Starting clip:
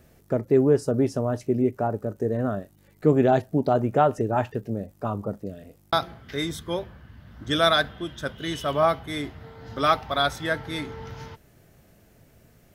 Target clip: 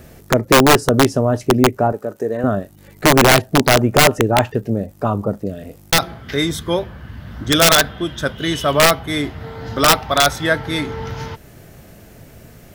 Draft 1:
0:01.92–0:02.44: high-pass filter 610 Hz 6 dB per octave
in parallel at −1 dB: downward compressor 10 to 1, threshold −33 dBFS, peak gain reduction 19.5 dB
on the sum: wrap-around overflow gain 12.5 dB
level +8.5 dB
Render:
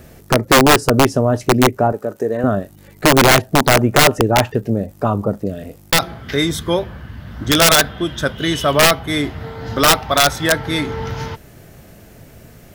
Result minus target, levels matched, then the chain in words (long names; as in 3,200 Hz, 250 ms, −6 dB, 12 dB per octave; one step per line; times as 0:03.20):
downward compressor: peak gain reduction −8 dB
0:01.92–0:02.44: high-pass filter 610 Hz 6 dB per octave
in parallel at −1 dB: downward compressor 10 to 1, threshold −42 dBFS, peak gain reduction 27.5 dB
on the sum: wrap-around overflow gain 12.5 dB
level +8.5 dB